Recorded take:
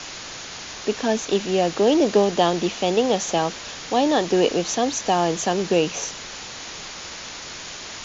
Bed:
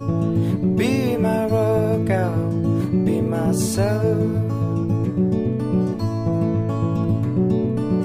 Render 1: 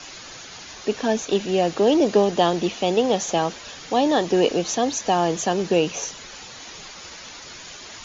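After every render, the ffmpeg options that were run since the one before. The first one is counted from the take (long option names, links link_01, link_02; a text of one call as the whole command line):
ffmpeg -i in.wav -af "afftdn=noise_reduction=8:noise_floor=-36" out.wav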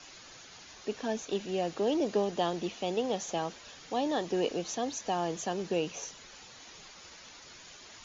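ffmpeg -i in.wav -af "volume=-11.5dB" out.wav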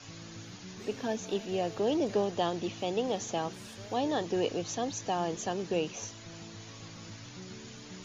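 ffmpeg -i in.wav -i bed.wav -filter_complex "[1:a]volume=-28dB[link_01];[0:a][link_01]amix=inputs=2:normalize=0" out.wav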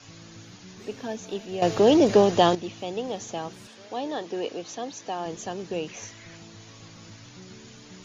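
ffmpeg -i in.wav -filter_complex "[0:a]asettb=1/sr,asplit=3[link_01][link_02][link_03];[link_01]atrim=end=3.674[link_04];[link_02]atrim=start=3.67:end=5.26,asetpts=PTS-STARTPTS,afade=type=in:duration=0.004:curve=qsin,afade=type=out:start_time=1.586:duration=0.004:curve=qsin,highpass=230,lowpass=6600[link_05];[link_03]atrim=start=5.256[link_06];[link_04][link_05]acrossfade=duration=0.004:curve1=hsin:curve2=qsin[link_07];[link_07][link_06]acrossfade=duration=0.004:curve1=qsin:curve2=hsin,asettb=1/sr,asplit=3[link_08][link_09][link_10];[link_08]atrim=end=5.884[link_11];[link_09]atrim=start=5.88:end=6.37,asetpts=PTS-STARTPTS,afade=type=in:duration=0.004:curve=qsin,afade=type=out:start_time=0.486:duration=0.004:curve=qsin,equalizer=frequency=2000:width=2.3:gain=9.5[link_12];[link_10]atrim=start=6.366[link_13];[link_11][link_12]acrossfade=duration=0.004:curve1=hsin:curve2=qsin[link_14];[link_14][link_13]acrossfade=duration=0.004:curve1=qsin:curve2=hsin,asplit=3[link_15][link_16][link_17];[link_15]atrim=end=1.622[link_18];[link_16]atrim=start=1.618:end=2.552,asetpts=PTS-STARTPTS,volume=11.5dB[link_19];[link_17]atrim=start=2.548[link_20];[link_18][link_19]acrossfade=duration=0.004:curve1=hsin:curve2=hsin[link_21];[link_21][link_20]acrossfade=duration=0.004:curve1=hsin:curve2=hsin" out.wav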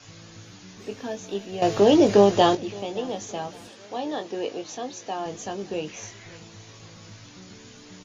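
ffmpeg -i in.wav -filter_complex "[0:a]asplit=2[link_01][link_02];[link_02]adelay=20,volume=-7dB[link_03];[link_01][link_03]amix=inputs=2:normalize=0,aecho=1:1:567|1134|1701:0.0708|0.0283|0.0113" out.wav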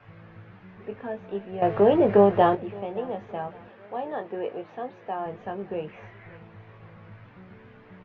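ffmpeg -i in.wav -af "lowpass=frequency=2100:width=0.5412,lowpass=frequency=2100:width=1.3066,equalizer=frequency=290:width=4.3:gain=-10.5" out.wav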